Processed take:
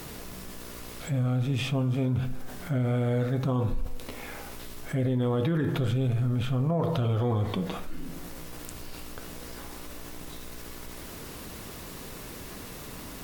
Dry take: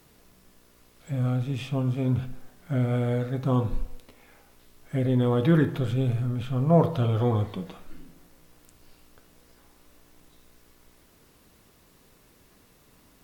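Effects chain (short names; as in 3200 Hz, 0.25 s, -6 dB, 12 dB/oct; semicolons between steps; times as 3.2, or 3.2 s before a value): limiter -21 dBFS, peak gain reduction 12 dB; fast leveller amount 50%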